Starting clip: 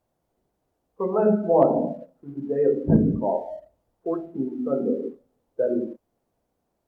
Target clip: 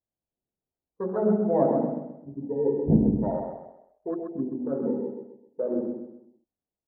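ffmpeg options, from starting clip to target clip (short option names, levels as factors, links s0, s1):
-filter_complex "[0:a]afwtdn=0.0398,firequalizer=gain_entry='entry(220,0);entry(530,-4);entry(2700,-10)':delay=0.05:min_phase=1,asplit=2[s0][s1];[s1]aecho=0:1:130|260|390|520:0.562|0.202|0.0729|0.0262[s2];[s0][s2]amix=inputs=2:normalize=0,volume=0.794"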